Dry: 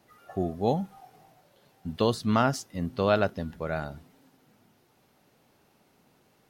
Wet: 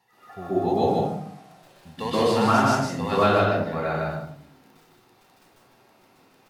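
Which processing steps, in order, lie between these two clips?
0.75–3.11 s: CVSD coder 64 kbps; high-pass 480 Hz 6 dB/octave; treble shelf 5.2 kHz -5 dB; crackle 11 per s -42 dBFS; flange 0.36 Hz, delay 7.7 ms, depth 9.9 ms, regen -69%; delay 153 ms -3.5 dB; reverberation RT60 0.50 s, pre-delay 119 ms, DRR -7.5 dB

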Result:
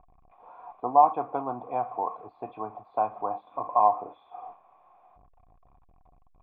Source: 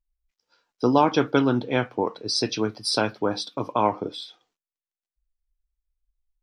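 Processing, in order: jump at every zero crossing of -33 dBFS; cascade formant filter a; trim +8 dB

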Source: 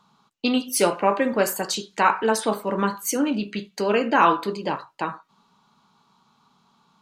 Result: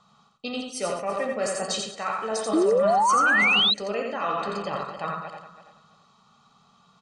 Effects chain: backward echo that repeats 166 ms, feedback 47%, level -12.5 dB; steep low-pass 9.4 kHz 72 dB/octave; reverse; compression 5:1, threshold -28 dBFS, peak gain reduction 14.5 dB; reverse; painted sound noise, 3.09–3.62 s, 710–1500 Hz -32 dBFS; comb 1.6 ms, depth 63%; delay 86 ms -4 dB; painted sound rise, 2.53–3.74 s, 300–4100 Hz -20 dBFS

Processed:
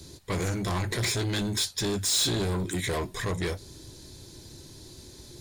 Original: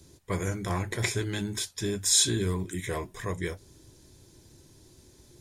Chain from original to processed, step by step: in parallel at +3 dB: peak limiter -21 dBFS, peak gain reduction 10.5 dB; on the sum: saturation -25 dBFS, distortion -8 dB; peaking EQ 4.2 kHz +8 dB 0.46 oct

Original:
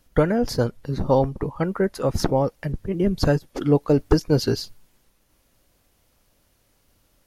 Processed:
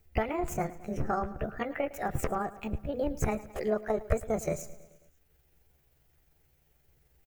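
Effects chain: rotating-head pitch shifter +6.5 st; dynamic bell 1.2 kHz, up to +7 dB, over -37 dBFS, Q 1.5; compression 2:1, threshold -24 dBFS, peak gain reduction 7.5 dB; graphic EQ 250/1000/4000/8000 Hz -9/-12/-8/-8 dB; feedback delay 108 ms, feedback 60%, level -18 dB

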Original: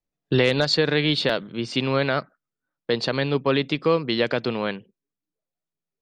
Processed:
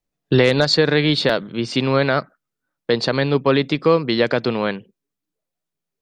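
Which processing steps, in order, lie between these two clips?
dynamic bell 2.9 kHz, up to -5 dB, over -38 dBFS, Q 2.5; trim +5 dB

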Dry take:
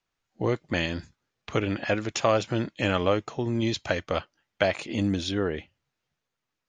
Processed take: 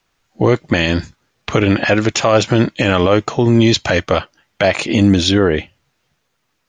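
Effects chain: loudness maximiser +17 dB; trim -1 dB

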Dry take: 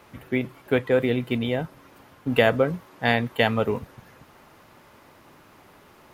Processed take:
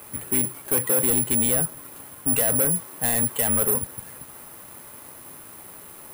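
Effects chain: peak limiter -13.5 dBFS, peak gain reduction 8 dB; saturation -27 dBFS, distortion -8 dB; careless resampling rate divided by 4×, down none, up zero stuff; trim +3.5 dB

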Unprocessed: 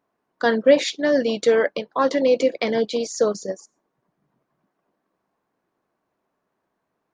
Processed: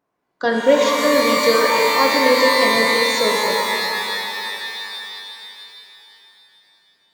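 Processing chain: pitch-shifted reverb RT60 3.2 s, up +12 st, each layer -2 dB, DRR 0 dB; trim -1 dB

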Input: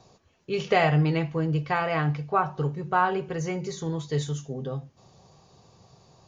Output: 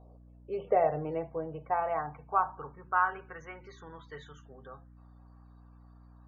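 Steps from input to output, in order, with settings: band-pass sweep 580 Hz -> 1.4 kHz, 1.18–3.17 s; loudest bins only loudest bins 64; hum 60 Hz, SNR 20 dB

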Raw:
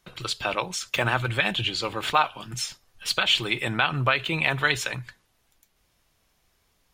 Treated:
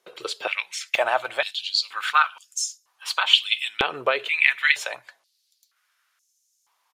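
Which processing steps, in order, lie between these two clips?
resampled via 32 kHz; step-sequenced high-pass 2.1 Hz 450–6500 Hz; trim -2.5 dB

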